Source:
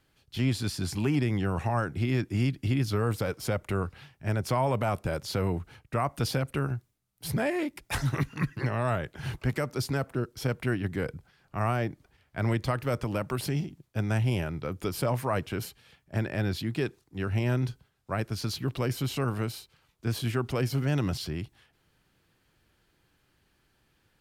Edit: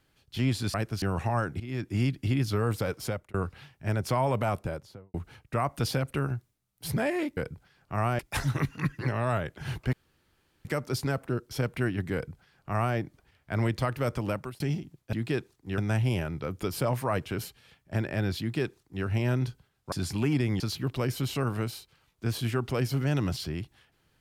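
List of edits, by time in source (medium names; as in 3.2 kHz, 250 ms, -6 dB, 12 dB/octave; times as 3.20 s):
0.74–1.42 s: swap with 18.13–18.41 s
2.00–2.37 s: fade in, from -17 dB
3.42–3.74 s: fade out
4.86–5.54 s: studio fade out
9.51 s: insert room tone 0.72 s
11.00–11.82 s: copy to 7.77 s
13.19–13.46 s: fade out
16.61–17.26 s: copy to 13.99 s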